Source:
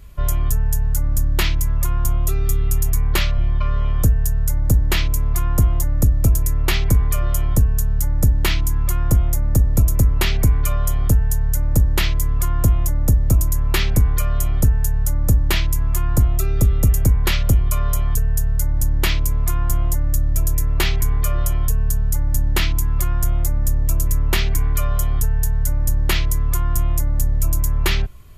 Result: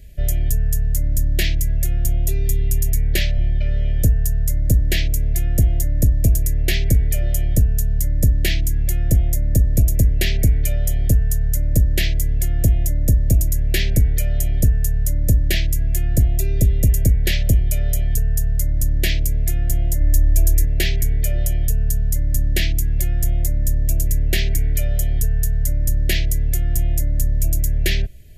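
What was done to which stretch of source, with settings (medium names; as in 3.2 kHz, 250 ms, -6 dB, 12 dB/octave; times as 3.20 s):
20.00–20.65 s: comb 2.9 ms, depth 75%
whole clip: Chebyshev band-stop 670–1700 Hz, order 3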